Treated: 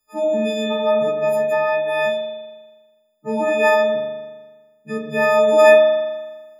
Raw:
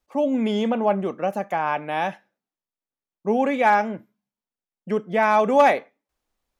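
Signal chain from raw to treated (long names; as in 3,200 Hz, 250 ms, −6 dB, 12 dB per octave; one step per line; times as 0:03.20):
every partial snapped to a pitch grid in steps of 6 semitones
spring reverb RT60 1.3 s, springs 40 ms, chirp 30 ms, DRR −1.5 dB
level −3.5 dB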